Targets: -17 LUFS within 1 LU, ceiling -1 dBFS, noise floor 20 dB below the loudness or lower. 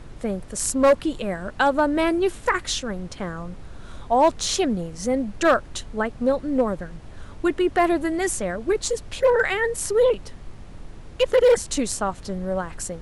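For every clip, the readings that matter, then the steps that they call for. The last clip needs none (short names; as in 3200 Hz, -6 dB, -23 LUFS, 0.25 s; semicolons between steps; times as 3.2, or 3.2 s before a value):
clipped 0.4%; flat tops at -10.5 dBFS; noise floor -41 dBFS; noise floor target -43 dBFS; loudness -23.0 LUFS; peak -10.5 dBFS; loudness target -17.0 LUFS
-> clip repair -10.5 dBFS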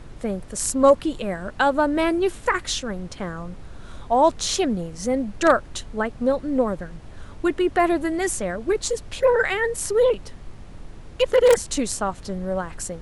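clipped 0.0%; noise floor -41 dBFS; noise floor target -43 dBFS
-> noise print and reduce 6 dB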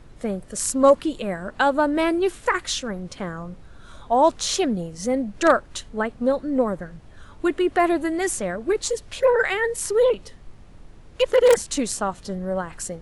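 noise floor -46 dBFS; loudness -22.5 LUFS; peak -1.5 dBFS; loudness target -17.0 LUFS
-> gain +5.5 dB; limiter -1 dBFS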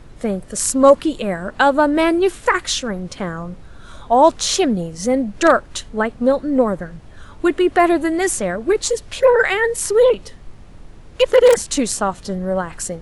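loudness -17.0 LUFS; peak -1.0 dBFS; noise floor -41 dBFS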